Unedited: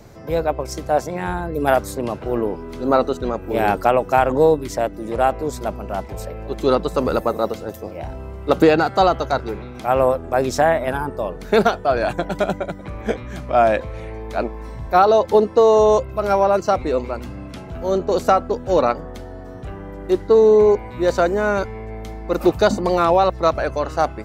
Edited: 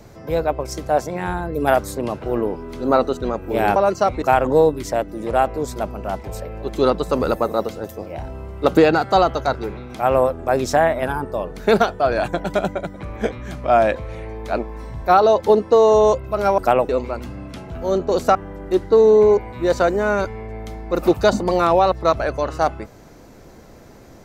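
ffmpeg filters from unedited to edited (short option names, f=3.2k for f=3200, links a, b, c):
-filter_complex "[0:a]asplit=6[a][b][c][d][e][f];[a]atrim=end=3.762[g];[b]atrim=start=16.428:end=16.892[h];[c]atrim=start=4.068:end=16.432[i];[d]atrim=start=3.758:end=4.072[j];[e]atrim=start=16.888:end=18.352[k];[f]atrim=start=19.728[l];[g][h]acrossfade=d=0.004:c1=hsin:c2=hsin[m];[m][i]acrossfade=d=0.004:c1=hsin:c2=hsin[n];[n][j]acrossfade=d=0.004:c1=hsin:c2=hsin[o];[o][k]acrossfade=d=0.004:c1=hsin:c2=hsin[p];[p][l]acrossfade=d=0.004:c1=hsin:c2=hsin"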